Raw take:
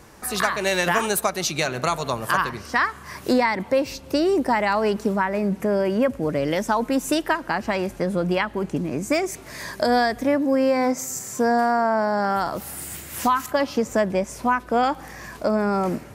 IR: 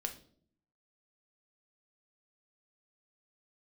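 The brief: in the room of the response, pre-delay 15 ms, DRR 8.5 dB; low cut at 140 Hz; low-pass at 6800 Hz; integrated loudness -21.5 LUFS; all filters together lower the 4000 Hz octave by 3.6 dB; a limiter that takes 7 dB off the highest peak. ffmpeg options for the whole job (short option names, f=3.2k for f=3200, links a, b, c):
-filter_complex "[0:a]highpass=140,lowpass=6.8k,equalizer=f=4k:t=o:g=-4,alimiter=limit=-13dB:level=0:latency=1,asplit=2[a][b];[1:a]atrim=start_sample=2205,adelay=15[c];[b][c]afir=irnorm=-1:irlink=0,volume=-8.5dB[d];[a][d]amix=inputs=2:normalize=0,volume=2.5dB"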